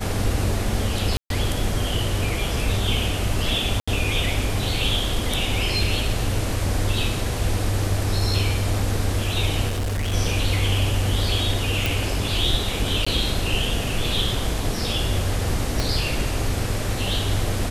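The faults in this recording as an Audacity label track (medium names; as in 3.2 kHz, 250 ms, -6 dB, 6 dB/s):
1.170000	1.300000	dropout 132 ms
3.800000	3.880000	dropout 75 ms
9.680000	10.140000	clipped -21.5 dBFS
11.860000	11.860000	pop
13.050000	13.060000	dropout 15 ms
15.800000	15.800000	pop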